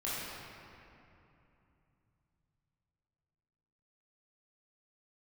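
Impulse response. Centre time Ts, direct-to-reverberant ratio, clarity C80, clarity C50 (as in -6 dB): 174 ms, -10.0 dB, -2.0 dB, -4.0 dB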